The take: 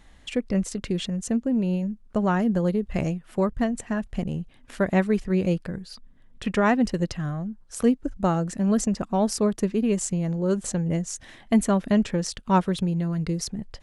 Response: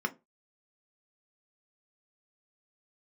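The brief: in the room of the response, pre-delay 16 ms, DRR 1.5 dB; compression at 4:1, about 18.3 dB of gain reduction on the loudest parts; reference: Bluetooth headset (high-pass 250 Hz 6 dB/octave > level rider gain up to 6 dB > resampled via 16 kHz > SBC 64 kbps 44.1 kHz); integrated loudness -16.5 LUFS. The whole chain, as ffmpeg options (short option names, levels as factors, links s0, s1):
-filter_complex "[0:a]acompressor=threshold=0.0126:ratio=4,asplit=2[s0][s1];[1:a]atrim=start_sample=2205,adelay=16[s2];[s1][s2]afir=irnorm=-1:irlink=0,volume=0.422[s3];[s0][s3]amix=inputs=2:normalize=0,highpass=f=250:p=1,dynaudnorm=m=2,aresample=16000,aresample=44100,volume=14.1" -ar 44100 -c:a sbc -b:a 64k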